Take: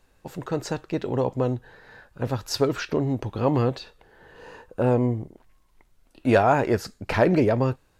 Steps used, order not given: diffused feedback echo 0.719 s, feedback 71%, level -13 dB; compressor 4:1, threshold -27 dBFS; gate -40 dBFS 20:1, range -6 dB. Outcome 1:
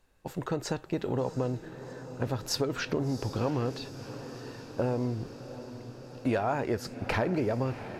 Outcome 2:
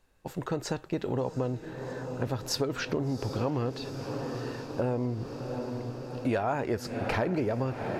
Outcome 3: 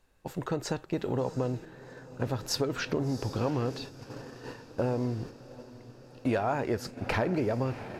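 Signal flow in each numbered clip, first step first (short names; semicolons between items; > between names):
gate > compressor > diffused feedback echo; diffused feedback echo > gate > compressor; compressor > diffused feedback echo > gate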